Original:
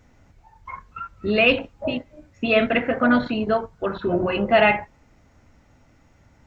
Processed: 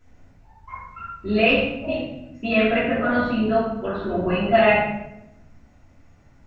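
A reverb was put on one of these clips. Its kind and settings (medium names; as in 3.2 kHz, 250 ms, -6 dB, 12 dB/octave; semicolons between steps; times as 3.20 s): simulated room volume 260 m³, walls mixed, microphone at 3 m; trim -9.5 dB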